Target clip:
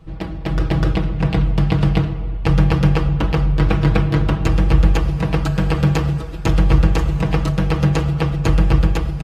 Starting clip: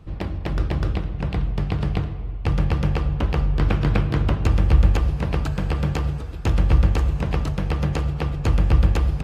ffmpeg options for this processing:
ffmpeg -i in.wav -af "aecho=1:1:6.2:0.75,dynaudnorm=framelen=130:gausssize=9:maxgain=7dB" out.wav

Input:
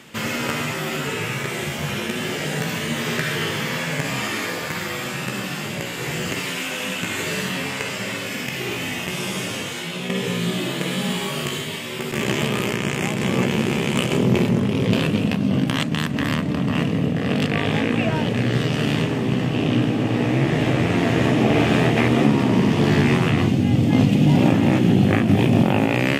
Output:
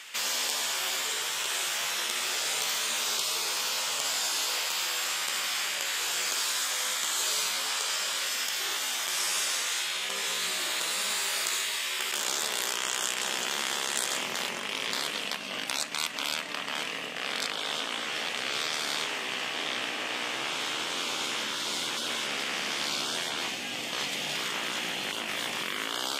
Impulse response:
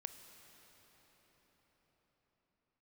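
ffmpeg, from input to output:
-af "highpass=1100,afftfilt=real='re*lt(hypot(re,im),0.0708)':imag='im*lt(hypot(re,im),0.0708)':win_size=1024:overlap=0.75,equalizer=frequency=5900:width=0.47:gain=5"

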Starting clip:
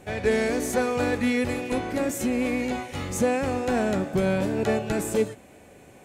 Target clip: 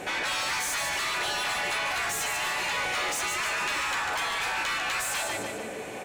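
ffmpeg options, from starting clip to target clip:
ffmpeg -i in.wav -filter_complex "[0:a]aecho=1:1:148|296|444|592|740:0.355|0.16|0.0718|0.0323|0.0145,afftfilt=real='re*lt(hypot(re,im),0.0631)':imag='im*lt(hypot(re,im),0.0631)':win_size=1024:overlap=0.75,asplit=2[link_01][link_02];[link_02]highpass=frequency=720:poles=1,volume=23dB,asoftclip=type=tanh:threshold=-20dB[link_03];[link_01][link_03]amix=inputs=2:normalize=0,lowpass=frequency=4500:poles=1,volume=-6dB" out.wav

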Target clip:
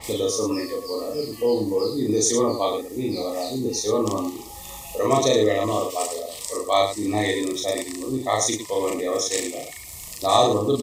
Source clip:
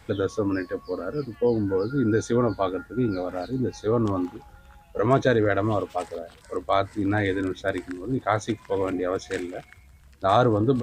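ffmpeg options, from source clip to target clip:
ffmpeg -i in.wav -filter_complex "[0:a]bass=frequency=250:gain=-9,treble=frequency=4000:gain=15,acompressor=mode=upward:threshold=-27dB:ratio=2.5,asuperstop=centerf=1500:order=12:qfactor=2.9,asplit=2[link_01][link_02];[link_02]aecho=0:1:37.9|107.9:0.891|0.447[link_03];[link_01][link_03]amix=inputs=2:normalize=0,adynamicequalizer=threshold=0.00891:dfrequency=3800:dqfactor=0.7:tfrequency=3800:tqfactor=0.7:attack=5:release=100:ratio=0.375:range=2:mode=boostabove:tftype=highshelf" out.wav

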